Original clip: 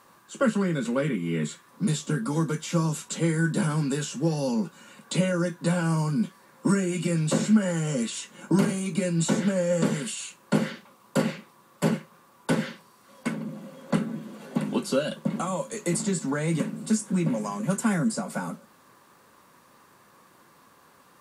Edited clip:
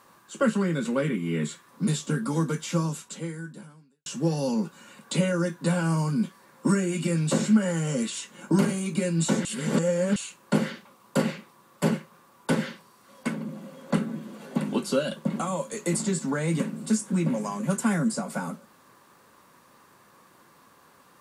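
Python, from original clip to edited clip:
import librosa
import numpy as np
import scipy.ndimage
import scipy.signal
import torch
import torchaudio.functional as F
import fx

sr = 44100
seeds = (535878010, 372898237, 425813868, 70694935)

y = fx.edit(x, sr, fx.fade_out_span(start_s=2.7, length_s=1.36, curve='qua'),
    fx.reverse_span(start_s=9.45, length_s=0.71), tone=tone)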